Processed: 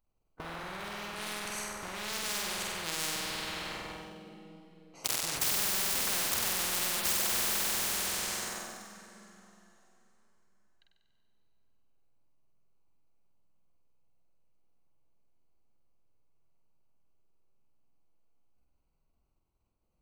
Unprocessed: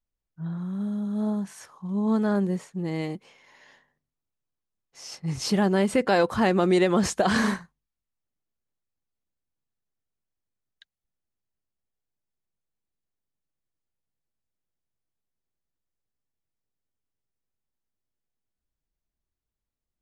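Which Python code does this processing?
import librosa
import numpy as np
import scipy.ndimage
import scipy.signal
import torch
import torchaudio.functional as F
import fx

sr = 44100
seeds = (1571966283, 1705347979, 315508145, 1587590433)

p1 = fx.wiener(x, sr, points=25)
p2 = 10.0 ** (-23.5 / 20.0) * (np.abs((p1 / 10.0 ** (-23.5 / 20.0) + 3.0) % 4.0 - 2.0) - 1.0)
p3 = p1 + (p2 * 10.0 ** (-5.0 / 20.0))
p4 = fx.level_steps(p3, sr, step_db=17)
p5 = fx.tilt_shelf(p4, sr, db=-5.5, hz=820.0)
p6 = fx.rev_plate(p5, sr, seeds[0], rt60_s=3.4, hf_ratio=0.9, predelay_ms=90, drr_db=8.5)
p7 = fx.leveller(p6, sr, passes=2)
p8 = fx.high_shelf(p7, sr, hz=9500.0, db=9.5)
p9 = p8 + fx.room_flutter(p8, sr, wall_m=8.2, rt60_s=1.0, dry=0)
y = fx.spectral_comp(p9, sr, ratio=10.0)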